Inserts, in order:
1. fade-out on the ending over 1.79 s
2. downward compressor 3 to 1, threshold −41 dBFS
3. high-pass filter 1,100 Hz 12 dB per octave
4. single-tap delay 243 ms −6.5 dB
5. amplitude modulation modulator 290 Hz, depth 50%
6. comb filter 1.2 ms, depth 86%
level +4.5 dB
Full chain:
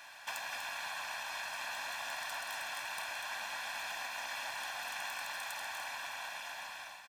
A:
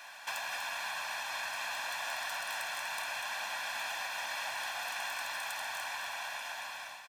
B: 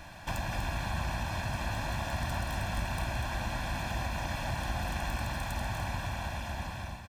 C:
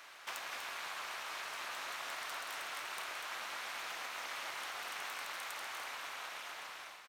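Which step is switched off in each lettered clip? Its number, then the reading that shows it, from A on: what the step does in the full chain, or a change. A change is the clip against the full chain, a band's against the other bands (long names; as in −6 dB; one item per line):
5, change in crest factor −3.0 dB
3, 250 Hz band +25.0 dB
6, 250 Hz band +3.0 dB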